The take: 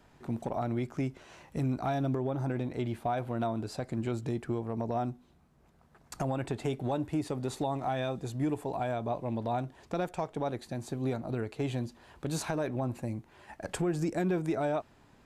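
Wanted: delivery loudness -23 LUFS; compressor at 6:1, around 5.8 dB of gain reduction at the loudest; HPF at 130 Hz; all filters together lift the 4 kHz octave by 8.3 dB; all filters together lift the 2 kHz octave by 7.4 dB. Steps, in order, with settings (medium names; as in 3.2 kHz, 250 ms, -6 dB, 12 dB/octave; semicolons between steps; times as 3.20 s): high-pass 130 Hz; peaking EQ 2 kHz +8 dB; peaking EQ 4 kHz +7.5 dB; compression 6:1, threshold -32 dBFS; trim +15 dB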